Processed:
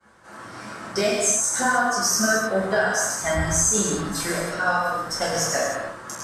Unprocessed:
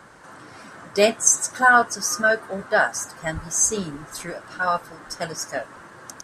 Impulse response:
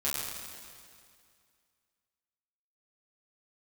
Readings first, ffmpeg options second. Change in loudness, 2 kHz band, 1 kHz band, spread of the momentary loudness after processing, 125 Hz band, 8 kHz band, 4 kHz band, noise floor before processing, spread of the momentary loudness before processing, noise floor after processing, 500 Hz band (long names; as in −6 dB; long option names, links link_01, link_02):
−0.5 dB, −2.5 dB, −1.5 dB, 12 LU, +6.5 dB, +1.0 dB, +3.5 dB, −45 dBFS, 17 LU, −42 dBFS, 0.0 dB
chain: -filter_complex "[0:a]agate=range=-33dB:threshold=-39dB:ratio=3:detection=peak,acompressor=threshold=-24dB:ratio=10[link_01];[1:a]atrim=start_sample=2205,afade=type=out:start_time=0.38:duration=0.01,atrim=end_sample=17199[link_02];[link_01][link_02]afir=irnorm=-1:irlink=0,volume=1.5dB"